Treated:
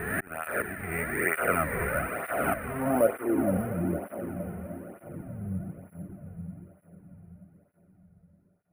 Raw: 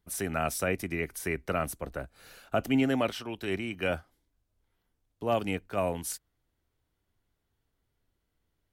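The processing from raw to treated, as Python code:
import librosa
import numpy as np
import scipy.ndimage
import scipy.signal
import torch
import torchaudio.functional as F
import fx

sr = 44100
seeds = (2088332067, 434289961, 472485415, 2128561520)

p1 = fx.spec_swells(x, sr, rise_s=1.14)
p2 = scipy.signal.sosfilt(scipy.signal.butter(4, 3800.0, 'lowpass', fs=sr, output='sos'), p1)
p3 = fx.low_shelf(p2, sr, hz=63.0, db=11.5)
p4 = fx.auto_swell(p3, sr, attack_ms=588.0)
p5 = fx.schmitt(p4, sr, flips_db=-39.0)
p6 = p4 + (p5 * librosa.db_to_amplitude(-6.0))
p7 = fx.filter_sweep_lowpass(p6, sr, from_hz=1800.0, to_hz=160.0, start_s=2.49, end_s=3.71, q=3.1)
p8 = p7 + fx.echo_diffused(p7, sr, ms=535, feedback_pct=53, wet_db=-6.5, dry=0)
p9 = np.repeat(scipy.signal.resample_poly(p8, 1, 4), 4)[:len(p8)]
y = fx.flanger_cancel(p9, sr, hz=1.1, depth_ms=3.7)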